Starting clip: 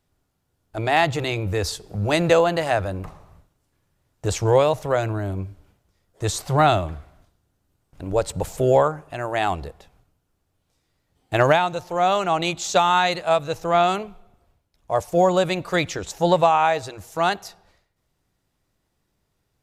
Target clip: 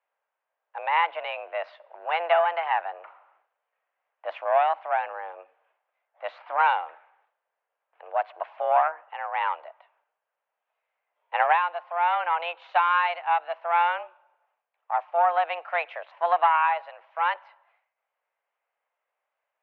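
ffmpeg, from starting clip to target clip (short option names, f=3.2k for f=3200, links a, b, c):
-af "aeval=exprs='0.596*(cos(1*acos(clip(val(0)/0.596,-1,1)))-cos(1*PI/2))+0.0596*(cos(4*acos(clip(val(0)/0.596,-1,1)))-cos(4*PI/2))':c=same,highpass=f=420:t=q:w=0.5412,highpass=f=420:t=q:w=1.307,lowpass=f=2.6k:t=q:w=0.5176,lowpass=f=2.6k:t=q:w=0.7071,lowpass=f=2.6k:t=q:w=1.932,afreqshift=170,volume=-3.5dB"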